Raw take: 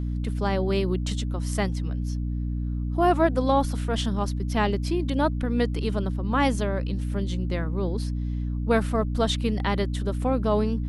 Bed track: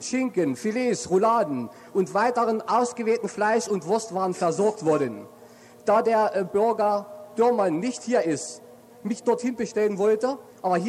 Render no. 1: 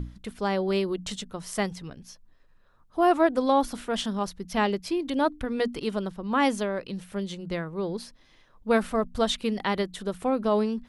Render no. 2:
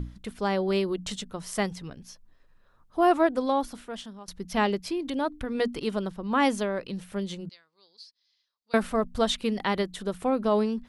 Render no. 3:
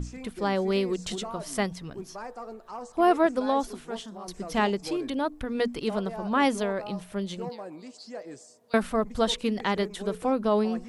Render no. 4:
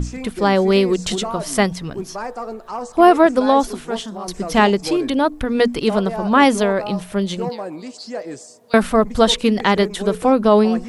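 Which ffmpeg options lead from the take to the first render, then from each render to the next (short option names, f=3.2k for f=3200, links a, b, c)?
-af "bandreject=f=60:t=h:w=6,bandreject=f=120:t=h:w=6,bandreject=f=180:t=h:w=6,bandreject=f=240:t=h:w=6,bandreject=f=300:t=h:w=6"
-filter_complex "[0:a]asettb=1/sr,asplit=3[a][b][c];[a]atrim=end=4.864[d];[b]atrim=start=4.86:end=5.55,asetpts=PTS-STARTPTS,afade=t=in:d=0.004:c=qsin,afade=t=out:st=0.686:d=0.004:c=qsin,acompressor=threshold=-30dB:ratio=1.5:attack=3.2:release=140:knee=1:detection=peak[e];[c]atrim=start=5.546[f];[d][e]acrossfade=d=0.004:c1=hsin:c2=qsin[g];[g][f]acrossfade=d=0.004:c1=qsin:c2=hsin,asettb=1/sr,asplit=3[h][i][j];[h]atrim=end=7.494[k];[i]atrim=start=7.49:end=8.74,asetpts=PTS-STARTPTS,afade=t=in:d=0.004:c=qsin,afade=t=out:st=1.246:d=0.004:c=qsin,bandpass=f=4.6k:t=q:w=5.7[l];[j]atrim=start=8.736[m];[k][l]acrossfade=d=0.004:c1=hsin:c2=qsin[n];[n][m]acrossfade=d=0.004:c1=qsin:c2=hsin,asplit=2[o][p];[o]atrim=end=4.28,asetpts=PTS-STARTPTS,afade=t=out:st=3.09:d=1.19:silence=0.0944061[q];[p]atrim=start=4.28,asetpts=PTS-STARTPTS,afade=t=in:d=0.004:c=hsin:silence=0.0944061[r];[q][r]concat=n=2:v=0:a=1"
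-filter_complex "[1:a]volume=-17.5dB[a];[0:a][a]amix=inputs=2:normalize=0"
-af "volume=11dB,alimiter=limit=-2dB:level=0:latency=1"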